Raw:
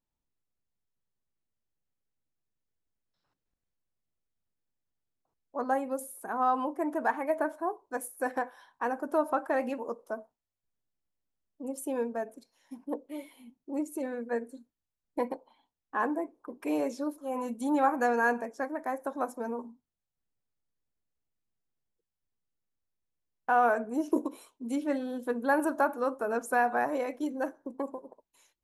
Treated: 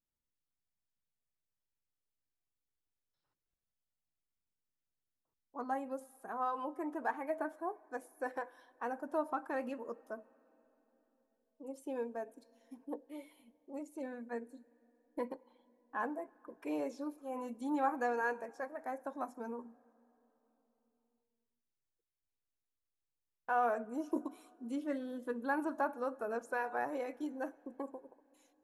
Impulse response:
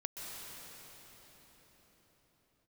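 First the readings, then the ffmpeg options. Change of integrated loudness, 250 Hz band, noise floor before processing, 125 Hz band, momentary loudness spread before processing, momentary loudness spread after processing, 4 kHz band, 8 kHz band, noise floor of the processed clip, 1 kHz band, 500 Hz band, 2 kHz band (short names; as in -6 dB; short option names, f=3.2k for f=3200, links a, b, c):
-8.0 dB, -8.0 dB, under -85 dBFS, n/a, 14 LU, 15 LU, -8.0 dB, -14.5 dB, under -85 dBFS, -8.0 dB, -8.0 dB, -8.5 dB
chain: -filter_complex "[0:a]acrossover=split=6200[a][b];[b]acompressor=threshold=-57dB:ratio=4:attack=1:release=60[c];[a][c]amix=inputs=2:normalize=0,flanger=delay=0.6:depth=2:regen=-62:speed=0.2:shape=sinusoidal,asplit=2[d][e];[1:a]atrim=start_sample=2205,asetrate=57330,aresample=44100[f];[e][f]afir=irnorm=-1:irlink=0,volume=-22dB[g];[d][g]amix=inputs=2:normalize=0,volume=-4dB"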